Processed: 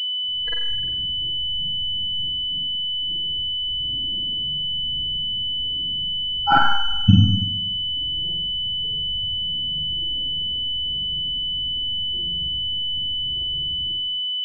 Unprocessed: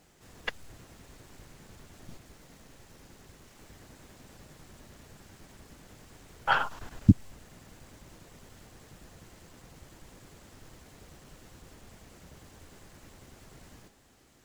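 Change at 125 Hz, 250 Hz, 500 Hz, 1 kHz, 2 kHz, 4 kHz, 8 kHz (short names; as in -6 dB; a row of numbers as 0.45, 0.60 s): +10.5 dB, +7.0 dB, +2.5 dB, +11.5 dB, +7.0 dB, +32.5 dB, n/a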